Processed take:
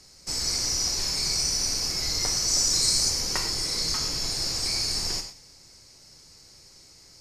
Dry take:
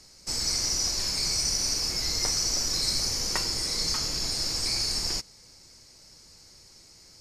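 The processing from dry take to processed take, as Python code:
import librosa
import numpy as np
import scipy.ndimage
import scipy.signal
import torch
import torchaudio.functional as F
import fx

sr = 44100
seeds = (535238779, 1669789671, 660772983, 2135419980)

y = fx.peak_eq(x, sr, hz=7800.0, db=9.0, octaves=0.79, at=(2.48, 3.1))
y = y + 10.0 ** (-23.5 / 20.0) * np.pad(y, (int(185 * sr / 1000.0), 0))[:len(y)]
y = fx.rev_gated(y, sr, seeds[0], gate_ms=140, shape='flat', drr_db=6.5)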